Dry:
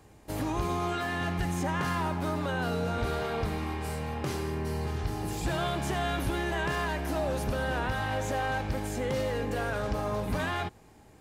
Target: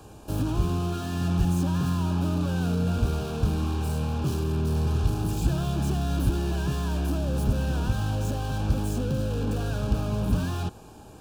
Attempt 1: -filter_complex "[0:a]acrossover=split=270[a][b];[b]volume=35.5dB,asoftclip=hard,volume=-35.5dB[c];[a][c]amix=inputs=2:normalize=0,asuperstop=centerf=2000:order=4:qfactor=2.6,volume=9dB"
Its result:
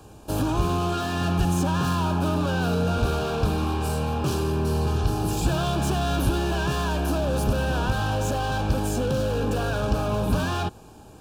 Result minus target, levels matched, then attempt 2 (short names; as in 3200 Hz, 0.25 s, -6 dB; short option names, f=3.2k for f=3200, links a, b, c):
overloaded stage: distortion -4 dB
-filter_complex "[0:a]acrossover=split=270[a][b];[b]volume=46dB,asoftclip=hard,volume=-46dB[c];[a][c]amix=inputs=2:normalize=0,asuperstop=centerf=2000:order=4:qfactor=2.6,volume=9dB"